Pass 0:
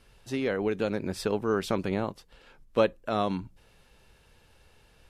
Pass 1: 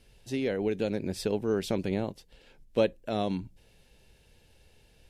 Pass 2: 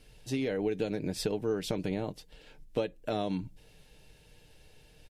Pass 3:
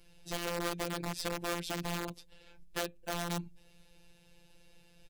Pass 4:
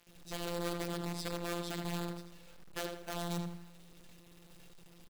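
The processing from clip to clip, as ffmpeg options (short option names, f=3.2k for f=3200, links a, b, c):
-af "equalizer=f=1.2k:t=o:w=0.83:g=-12.5"
-af "acompressor=threshold=-30dB:ratio=6,aecho=1:1:6.6:0.39,volume=2dB"
-af "aeval=exprs='(mod(17.8*val(0)+1,2)-1)/17.8':c=same,afftfilt=real='hypot(re,im)*cos(PI*b)':imag='0':win_size=1024:overlap=0.75"
-filter_complex "[0:a]asplit=2[a][b];[b]adelay=81,lowpass=f=3.3k:p=1,volume=-4dB,asplit=2[c][d];[d]adelay=81,lowpass=f=3.3k:p=1,volume=0.44,asplit=2[e][f];[f]adelay=81,lowpass=f=3.3k:p=1,volume=0.44,asplit=2[g][h];[h]adelay=81,lowpass=f=3.3k:p=1,volume=0.44,asplit=2[i][j];[j]adelay=81,lowpass=f=3.3k:p=1,volume=0.44,asplit=2[k][l];[l]adelay=81,lowpass=f=3.3k:p=1,volume=0.44[m];[c][e][g][i][k][m]amix=inputs=6:normalize=0[n];[a][n]amix=inputs=2:normalize=0,acrusher=bits=8:mix=0:aa=0.000001,volume=-4.5dB"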